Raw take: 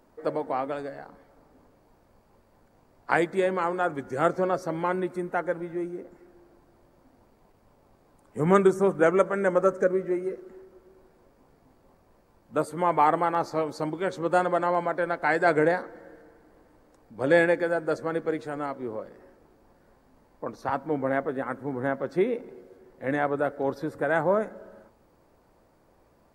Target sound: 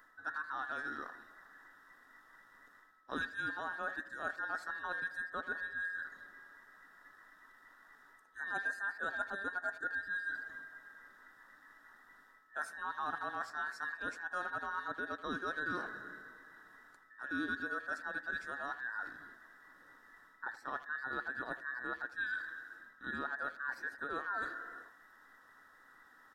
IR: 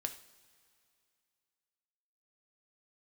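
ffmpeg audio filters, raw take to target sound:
-filter_complex "[0:a]afftfilt=real='real(if(between(b,1,1012),(2*floor((b-1)/92)+1)*92-b,b),0)':imag='imag(if(between(b,1,1012),(2*floor((b-1)/92)+1)*92-b,b),0)*if(between(b,1,1012),-1,1)':win_size=2048:overlap=0.75,equalizer=frequency=280:width_type=o:width=0.45:gain=10,areverse,acompressor=threshold=-38dB:ratio=4,areverse,aeval=exprs='val(0)+0.000355*sin(2*PI*1300*n/s)':channel_layout=same,asplit=2[link_01][link_02];[link_02]adelay=80,highpass=300,lowpass=3400,asoftclip=type=hard:threshold=-34.5dB,volume=-13dB[link_03];[link_01][link_03]amix=inputs=2:normalize=0,volume=-1dB"

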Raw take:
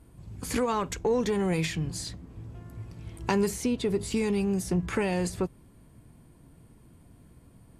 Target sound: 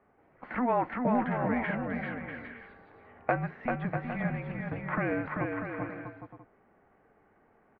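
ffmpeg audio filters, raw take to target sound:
ffmpeg -i in.wav -af "aecho=1:1:390|643.5|808.3|915.4|985:0.631|0.398|0.251|0.158|0.1,highpass=frequency=530:width_type=q:width=0.5412,highpass=frequency=530:width_type=q:width=1.307,lowpass=frequency=2300:width_type=q:width=0.5176,lowpass=frequency=2300:width_type=q:width=0.7071,lowpass=frequency=2300:width_type=q:width=1.932,afreqshift=-250,volume=3dB" out.wav

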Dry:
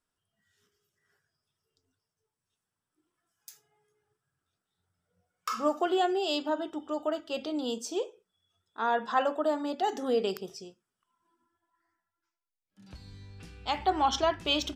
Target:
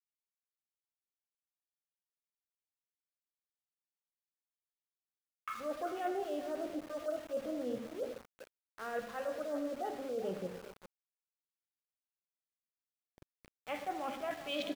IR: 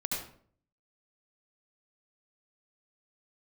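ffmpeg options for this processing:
-filter_complex "[0:a]highpass=150,equalizer=frequency=380:width_type=q:width=4:gain=-8,equalizer=frequency=540:width_type=q:width=4:gain=9,equalizer=frequency=2200:width_type=q:width=4:gain=5,lowpass=frequency=3400:width=0.5412,lowpass=frequency=3400:width=1.3066,afwtdn=0.0141,equalizer=frequency=920:width=3.7:gain=-12.5,areverse,acompressor=threshold=-39dB:ratio=8,areverse,bandreject=frequency=226.8:width_type=h:width=4,bandreject=frequency=453.6:width_type=h:width=4,flanger=delay=7.1:depth=4.4:regen=74:speed=0.63:shape=sinusoidal,aecho=1:1:96|394:0.168|0.224,asplit=2[link_01][link_02];[1:a]atrim=start_sample=2205[link_03];[link_02][link_03]afir=irnorm=-1:irlink=0,volume=-10dB[link_04];[link_01][link_04]amix=inputs=2:normalize=0,aeval=exprs='val(0)*gte(abs(val(0)),0.00224)':channel_layout=same,volume=5.5dB"

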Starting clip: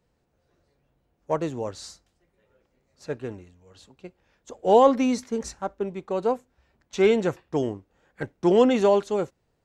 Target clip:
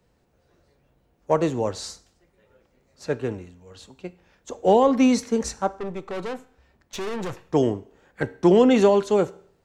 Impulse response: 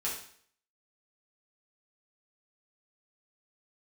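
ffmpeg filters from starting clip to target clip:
-filter_complex "[0:a]acrossover=split=230[link_01][link_02];[link_02]acompressor=threshold=-20dB:ratio=6[link_03];[link_01][link_03]amix=inputs=2:normalize=0,asettb=1/sr,asplit=3[link_04][link_05][link_06];[link_04]atrim=end=5.674[link_07];[link_05]atrim=start=5.67:end=7.45,asetpts=PTS-STARTPTS,afade=type=in:duration=0.004:curve=qsin,afade=type=out:start_time=1.776:duration=0.004:curve=qsin,aeval=exprs='(tanh(50.1*val(0)+0.45)-tanh(0.45))/50.1':channel_layout=same[link_08];[link_06]atrim=start=7.446[link_09];[link_07][link_08]acrossfade=duration=0.004:curve1=hsin:curve2=qsin[link_10];[link_10][link_09]acrossfade=duration=0.004:curve1=qsin:curve2=hsin,asplit=2[link_11][link_12];[1:a]atrim=start_sample=2205[link_13];[link_12][link_13]afir=irnorm=-1:irlink=0,volume=-17dB[link_14];[link_11][link_14]amix=inputs=2:normalize=0,volume=5dB"

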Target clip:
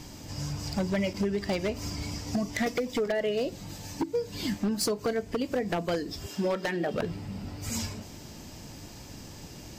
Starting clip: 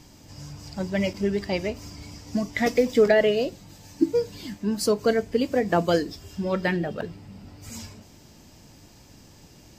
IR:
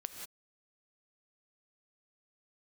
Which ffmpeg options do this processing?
-filter_complex "[0:a]asettb=1/sr,asplit=3[link_01][link_02][link_03];[link_01]atrim=end=6.264[link_04];[link_02]atrim=start=6.26:end=6.94,asetpts=PTS-STARTPTS,afade=type=in:duration=0.004:curve=qsin,afade=type=out:start_time=0.676:duration=0.004:curve=qsin,highpass=260[link_05];[link_03]atrim=start=6.936[link_06];[link_04][link_05]acrossfade=duration=0.004:curve1=hsin:curve2=qsin[link_07];[link_07][link_06]acrossfade=duration=0.004:curve1=qsin:curve2=hsin,acompressor=threshold=-30dB:ratio=20,aeval=exprs='0.0447*(abs(mod(val(0)/0.0447+3,4)-2)-1)':channel_layout=same,volume=6dB"

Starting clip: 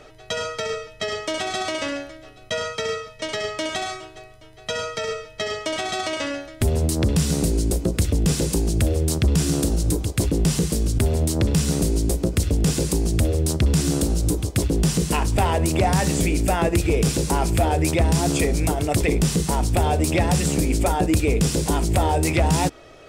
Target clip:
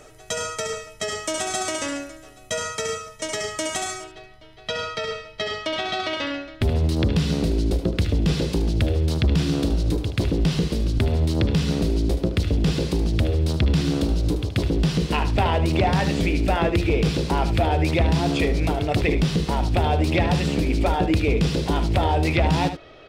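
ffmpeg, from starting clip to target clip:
ffmpeg -i in.wav -af "asetnsamples=nb_out_samples=441:pad=0,asendcmd='4.04 highshelf g -7;5.67 highshelf g -13.5',highshelf=frequency=5600:width_type=q:width=1.5:gain=8,aecho=1:1:75:0.299,volume=-1dB" out.wav

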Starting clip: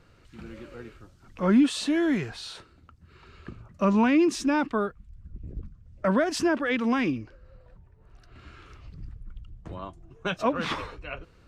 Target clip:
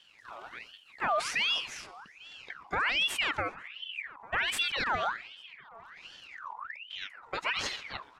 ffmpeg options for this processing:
ffmpeg -i in.wav -filter_complex "[0:a]asplit=2[link_01][link_02];[link_02]asplit=4[link_03][link_04][link_05][link_06];[link_03]adelay=176,afreqshift=-62,volume=-21dB[link_07];[link_04]adelay=352,afreqshift=-124,volume=-26.8dB[link_08];[link_05]adelay=528,afreqshift=-186,volume=-32.7dB[link_09];[link_06]adelay=704,afreqshift=-248,volume=-38.5dB[link_10];[link_07][link_08][link_09][link_10]amix=inputs=4:normalize=0[link_11];[link_01][link_11]amix=inputs=2:normalize=0,alimiter=limit=-20dB:level=0:latency=1:release=18,atempo=1.4,asplit=2[link_12][link_13];[link_13]adelay=848,lowpass=frequency=820:poles=1,volume=-21dB,asplit=2[link_14][link_15];[link_15]adelay=848,lowpass=frequency=820:poles=1,volume=0.46,asplit=2[link_16][link_17];[link_17]adelay=848,lowpass=frequency=820:poles=1,volume=0.46[link_18];[link_14][link_16][link_18]amix=inputs=3:normalize=0[link_19];[link_12][link_19]amix=inputs=2:normalize=0,aeval=exprs='val(0)*sin(2*PI*2000*n/s+2000*0.55/1.3*sin(2*PI*1.3*n/s))':channel_layout=same" out.wav

